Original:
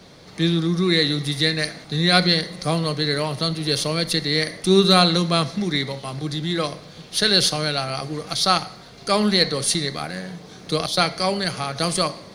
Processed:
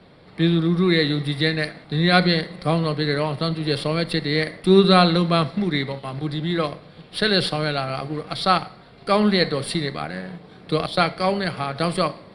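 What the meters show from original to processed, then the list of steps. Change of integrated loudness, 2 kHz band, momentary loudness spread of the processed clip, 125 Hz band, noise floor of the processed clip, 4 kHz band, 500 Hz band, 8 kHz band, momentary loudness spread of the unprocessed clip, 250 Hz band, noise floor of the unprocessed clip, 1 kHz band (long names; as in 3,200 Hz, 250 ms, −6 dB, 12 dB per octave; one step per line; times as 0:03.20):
−0.5 dB, +0.5 dB, 12 LU, +1.5 dB, −47 dBFS, −5.0 dB, +1.5 dB, −13.5 dB, 12 LU, +1.5 dB, −44 dBFS, +1.5 dB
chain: in parallel at −3 dB: dead-zone distortion −34.5 dBFS
on the sum: moving average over 7 samples
level −2.5 dB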